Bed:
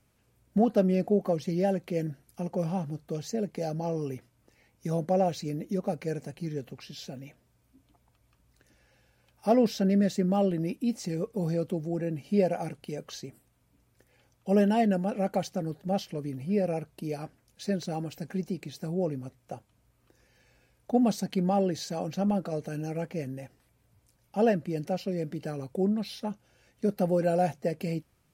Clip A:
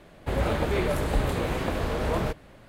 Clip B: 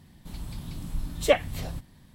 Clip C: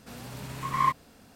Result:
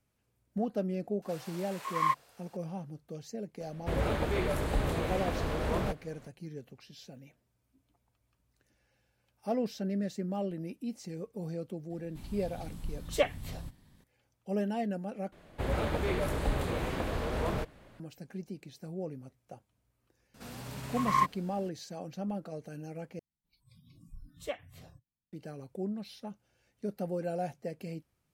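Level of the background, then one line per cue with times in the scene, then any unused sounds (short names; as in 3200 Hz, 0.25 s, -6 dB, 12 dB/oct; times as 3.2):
bed -9 dB
1.22 add C -3.5 dB + HPF 490 Hz 24 dB/oct
3.6 add A -5 dB
11.9 add B -7 dB
15.32 replace with A -5.5 dB
20.34 add C -2 dB
23.19 replace with B -17 dB + spectral noise reduction 26 dB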